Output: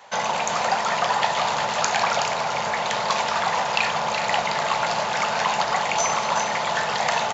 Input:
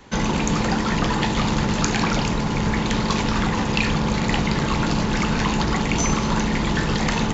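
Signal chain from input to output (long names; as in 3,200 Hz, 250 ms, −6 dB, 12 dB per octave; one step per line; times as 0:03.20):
high-pass filter 140 Hz 12 dB per octave
low shelf with overshoot 450 Hz −13 dB, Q 3
single-tap delay 373 ms −8.5 dB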